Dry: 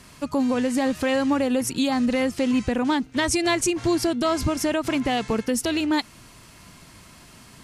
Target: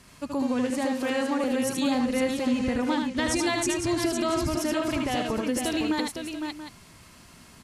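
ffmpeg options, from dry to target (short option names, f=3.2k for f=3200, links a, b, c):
-filter_complex "[0:a]asettb=1/sr,asplit=3[a][b][c];[a]atrim=end=0.704[d];[b]atrim=start=0.7:end=1.44,asetpts=PTS-STARTPTS,afade=t=in:d=0.004:c=qsin,afade=t=out:st=0.736:d=0.004:c=qsin,highpass=f=240:w=0.5412,highpass=f=240:w=1.3066[e];[c]atrim=start=1.436[f];[d][e]acrossfade=d=0.004:c1=hsin:c2=qsin[g];[g][f]acrossfade=d=0.004:c1=qsin:c2=hsin,aecho=1:1:77|109|507|682:0.631|0.119|0.501|0.224,volume=-5.5dB"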